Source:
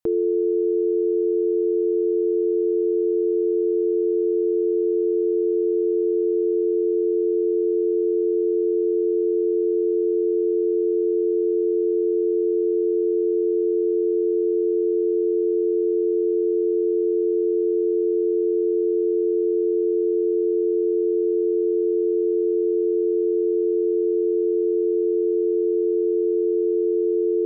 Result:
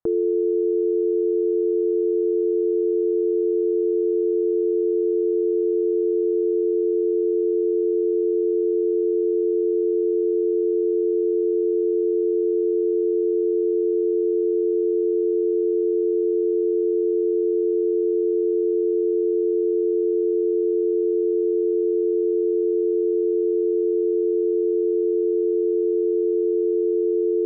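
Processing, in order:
low-pass filter 1,600 Hz 24 dB per octave

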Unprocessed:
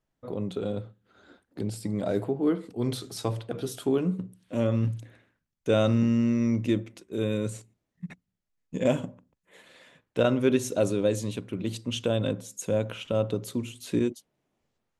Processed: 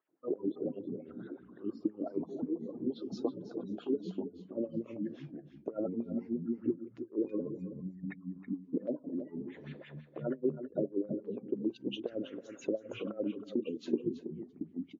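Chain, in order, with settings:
high-pass filter 130 Hz 12 dB per octave
treble cut that deepens with the level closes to 1,700 Hz, closed at −20.5 dBFS
gate on every frequency bin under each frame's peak −20 dB strong
parametric band 320 Hz +14 dB 1.1 octaves
downward compressor 4 to 1, threshold −33 dBFS, peak gain reduction 21 dB
auto-filter band-pass sine 5.8 Hz 300–2,700 Hz
delay with pitch and tempo change per echo 92 ms, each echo −4 semitones, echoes 2, each echo −6 dB
single-tap delay 325 ms −11.5 dB
level +5 dB
MP3 48 kbit/s 16,000 Hz

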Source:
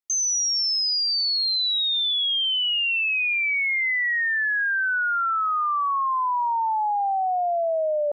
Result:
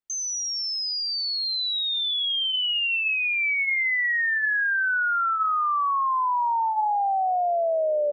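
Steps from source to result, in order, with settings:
bass and treble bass +5 dB, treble −7 dB
hum removal 438.7 Hz, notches 7
on a send: echo with shifted repeats 121 ms, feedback 55%, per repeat −90 Hz, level −21.5 dB

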